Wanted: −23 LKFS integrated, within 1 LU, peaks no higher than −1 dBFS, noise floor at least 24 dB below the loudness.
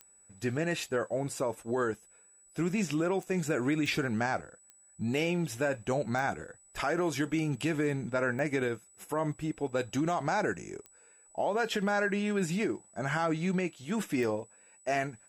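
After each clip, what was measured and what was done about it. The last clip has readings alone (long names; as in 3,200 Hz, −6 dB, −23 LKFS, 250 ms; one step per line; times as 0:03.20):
number of clicks 8; interfering tone 7,900 Hz; level of the tone −58 dBFS; integrated loudness −32.0 LKFS; sample peak −18.0 dBFS; target loudness −23.0 LKFS
→ click removal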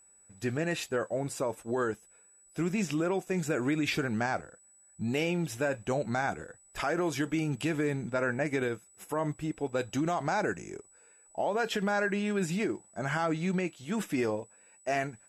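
number of clicks 0; interfering tone 7,900 Hz; level of the tone −58 dBFS
→ notch filter 7,900 Hz, Q 30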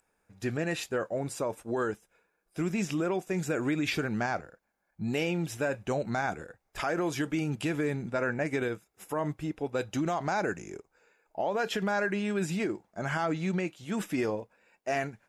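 interfering tone none found; integrated loudness −32.0 LKFS; sample peak −18.5 dBFS; target loudness −23.0 LKFS
→ level +9 dB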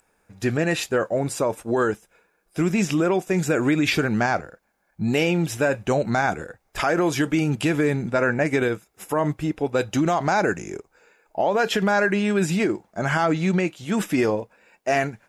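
integrated loudness −23.0 LKFS; sample peak −9.0 dBFS; background noise floor −68 dBFS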